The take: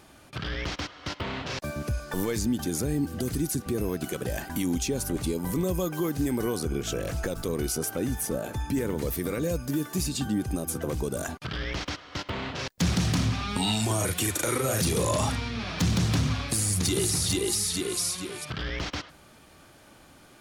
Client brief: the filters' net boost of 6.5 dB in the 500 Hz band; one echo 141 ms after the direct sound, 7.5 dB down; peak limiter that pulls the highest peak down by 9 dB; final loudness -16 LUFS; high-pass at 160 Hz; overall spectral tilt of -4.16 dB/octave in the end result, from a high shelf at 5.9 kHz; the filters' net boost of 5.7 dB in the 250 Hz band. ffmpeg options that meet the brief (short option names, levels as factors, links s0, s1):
-af "highpass=160,equalizer=f=250:t=o:g=6.5,equalizer=f=500:t=o:g=6,highshelf=f=5900:g=4,alimiter=limit=0.106:level=0:latency=1,aecho=1:1:141:0.422,volume=3.98"